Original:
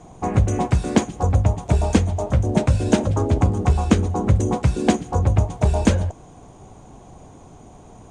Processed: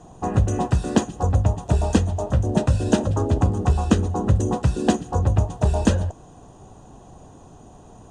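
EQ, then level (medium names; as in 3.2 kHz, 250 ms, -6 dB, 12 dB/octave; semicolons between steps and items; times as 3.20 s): Butterworth band-stop 2.2 kHz, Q 5.1; -1.5 dB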